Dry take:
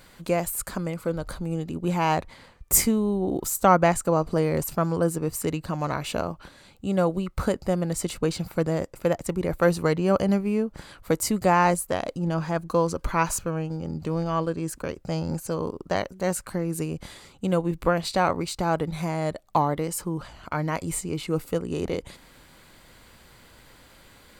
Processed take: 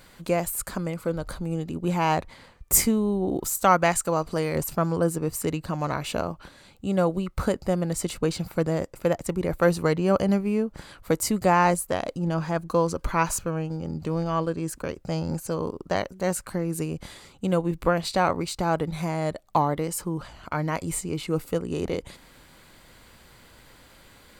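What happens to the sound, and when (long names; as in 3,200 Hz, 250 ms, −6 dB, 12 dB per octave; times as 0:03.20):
0:03.57–0:04.56: tilt shelving filter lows −4.5 dB, about 1,100 Hz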